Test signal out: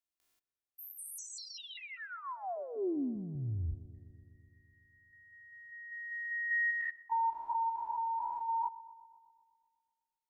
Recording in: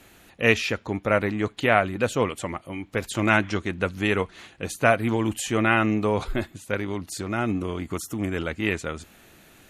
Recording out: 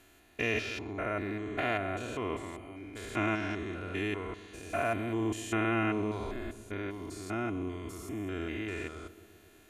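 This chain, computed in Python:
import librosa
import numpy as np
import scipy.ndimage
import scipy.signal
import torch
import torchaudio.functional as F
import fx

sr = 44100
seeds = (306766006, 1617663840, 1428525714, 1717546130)

y = fx.spec_steps(x, sr, hold_ms=200)
y = y + 0.58 * np.pad(y, (int(2.9 * sr / 1000.0), 0))[:len(y)]
y = fx.echo_filtered(y, sr, ms=125, feedback_pct=75, hz=1400.0, wet_db=-16.5)
y = F.gain(torch.from_numpy(y), -8.0).numpy()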